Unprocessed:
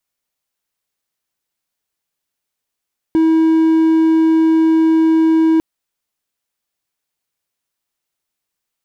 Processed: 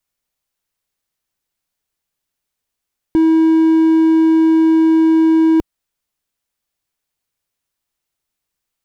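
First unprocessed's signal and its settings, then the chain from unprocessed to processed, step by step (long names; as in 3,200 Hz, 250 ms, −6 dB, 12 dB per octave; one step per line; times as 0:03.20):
tone triangle 322 Hz −7 dBFS 2.45 s
low-shelf EQ 95 Hz +9.5 dB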